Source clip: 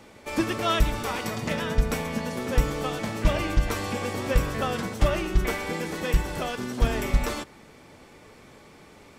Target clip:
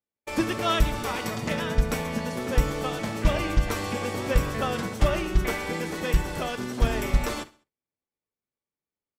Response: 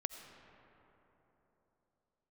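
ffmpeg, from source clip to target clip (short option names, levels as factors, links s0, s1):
-filter_complex "[0:a]agate=range=0.00447:threshold=0.0126:ratio=16:detection=peak,asplit=2[s0][s1];[s1]aecho=0:1:67|134|201:0.1|0.042|0.0176[s2];[s0][s2]amix=inputs=2:normalize=0"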